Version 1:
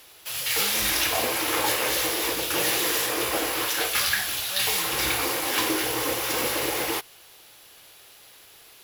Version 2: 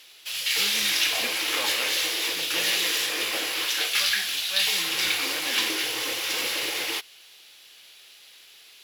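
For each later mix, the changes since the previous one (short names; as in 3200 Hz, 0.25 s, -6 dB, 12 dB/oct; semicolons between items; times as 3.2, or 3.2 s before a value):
background -7.5 dB; master: add weighting filter D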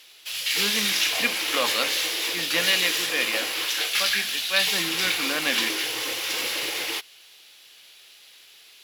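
speech +10.0 dB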